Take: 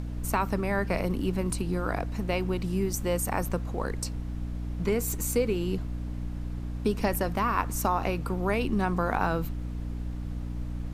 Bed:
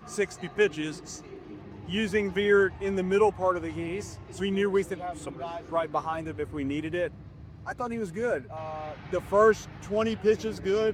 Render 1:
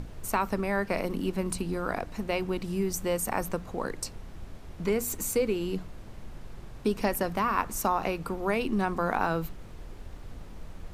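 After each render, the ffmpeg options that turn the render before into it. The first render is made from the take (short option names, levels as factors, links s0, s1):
-af "bandreject=f=60:t=h:w=6,bandreject=f=120:t=h:w=6,bandreject=f=180:t=h:w=6,bandreject=f=240:t=h:w=6,bandreject=f=300:t=h:w=6"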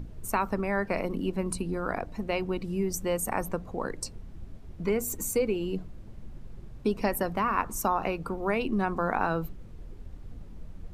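-af "afftdn=nr=10:nf=-44"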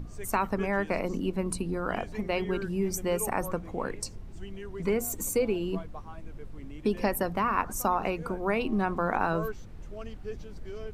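-filter_complex "[1:a]volume=0.158[s0];[0:a][s0]amix=inputs=2:normalize=0"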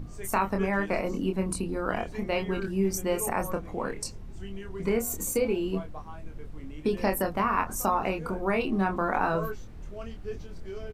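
-filter_complex "[0:a]asplit=2[s0][s1];[s1]adelay=26,volume=0.562[s2];[s0][s2]amix=inputs=2:normalize=0"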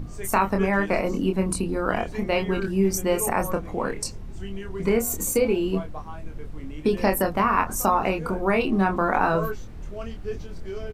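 -af "volume=1.78"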